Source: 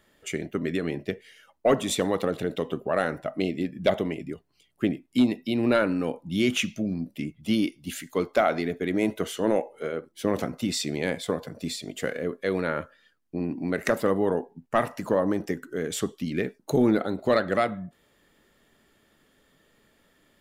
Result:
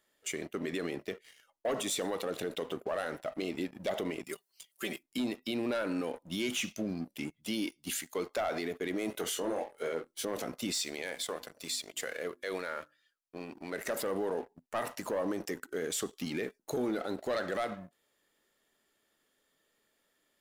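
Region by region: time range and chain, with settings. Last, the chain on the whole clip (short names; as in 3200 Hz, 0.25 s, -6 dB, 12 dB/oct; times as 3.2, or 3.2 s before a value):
4.24–5.03 tilt +3.5 dB/oct + comb 5.2 ms, depth 79%
9.12–10.25 doubler 24 ms -6 dB + core saturation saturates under 440 Hz
10.79–13.73 low shelf 480 Hz -10 dB + notches 50/100/150/200/250/300/350 Hz
whole clip: tone controls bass -11 dB, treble +6 dB; sample leveller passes 2; limiter -18 dBFS; gain -8 dB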